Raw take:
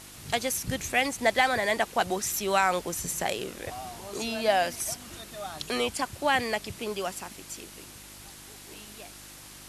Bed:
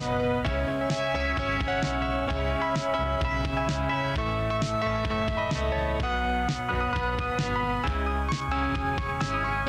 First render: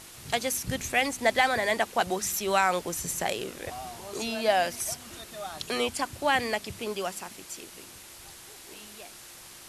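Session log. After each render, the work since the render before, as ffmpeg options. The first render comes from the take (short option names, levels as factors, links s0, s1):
-af "bandreject=f=50:t=h:w=4,bandreject=f=100:t=h:w=4,bandreject=f=150:t=h:w=4,bandreject=f=200:t=h:w=4,bandreject=f=250:t=h:w=4,bandreject=f=300:t=h:w=4"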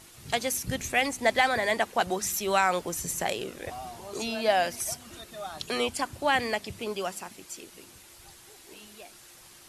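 -af "afftdn=nr=6:nf=-48"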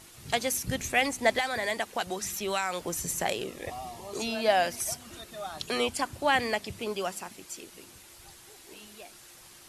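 -filter_complex "[0:a]asettb=1/sr,asplit=3[s0][s1][s2];[s0]atrim=end=1.384[s3];[s1]atrim=start=1.38:end=2.81,asetpts=PTS-STARTPTS,afade=t=in:d=0.004:c=qsin,afade=t=out:st=1.426:d=0.004:c=qsin,acrossover=split=1800|4300[s4][s5][s6];[s4]acompressor=threshold=0.0316:ratio=4[s7];[s5]acompressor=threshold=0.02:ratio=4[s8];[s6]acompressor=threshold=0.0178:ratio=4[s9];[s7][s8][s9]amix=inputs=3:normalize=0[s10];[s2]atrim=start=2.806[s11];[s3][s10]acrossfade=d=0.004:c1=hsin:c2=qsin[s12];[s12][s11]acrossfade=d=0.004:c1=qsin:c2=hsin,asettb=1/sr,asplit=3[s13][s14][s15];[s13]atrim=end=3.454[s16];[s14]atrim=start=3.45:end=4.14,asetpts=PTS-STARTPTS,afade=t=in:d=0.004:c=qsin,afade=t=out:st=0.686:d=0.004:c=qsin,asuperstop=centerf=1500:order=12:qfactor=6.7[s17];[s15]atrim=start=4.136[s18];[s16][s17]acrossfade=d=0.004:c1=hsin:c2=qsin[s19];[s19][s18]acrossfade=d=0.004:c1=qsin:c2=hsin"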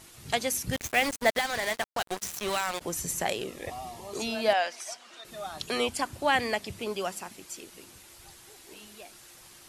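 -filter_complex "[0:a]asplit=3[s0][s1][s2];[s0]afade=t=out:st=0.72:d=0.02[s3];[s1]acrusher=bits=4:mix=0:aa=0.5,afade=t=in:st=0.72:d=0.02,afade=t=out:st=2.8:d=0.02[s4];[s2]afade=t=in:st=2.8:d=0.02[s5];[s3][s4][s5]amix=inputs=3:normalize=0,asettb=1/sr,asplit=3[s6][s7][s8];[s6]atrim=end=4.534[s9];[s7]atrim=start=4.53:end=5.25,asetpts=PTS-STARTPTS,afade=t=in:d=0.004:c=qsin,afade=t=out:st=0.716:d=0.004:c=qsin,highpass=610,lowpass=5400[s10];[s8]atrim=start=5.246[s11];[s9][s10]acrossfade=d=0.004:c1=hsin:c2=qsin[s12];[s12][s11]acrossfade=d=0.004:c1=qsin:c2=hsin"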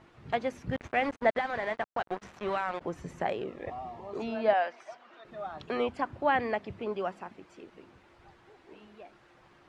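-af "lowpass=1600,lowshelf=f=74:g=-7"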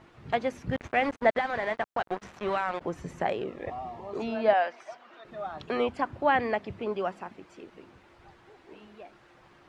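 -af "volume=1.33"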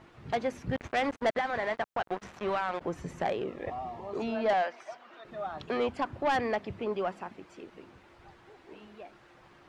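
-af "asoftclip=type=tanh:threshold=0.0841"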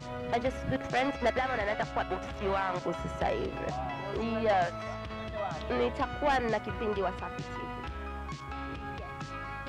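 -filter_complex "[1:a]volume=0.251[s0];[0:a][s0]amix=inputs=2:normalize=0"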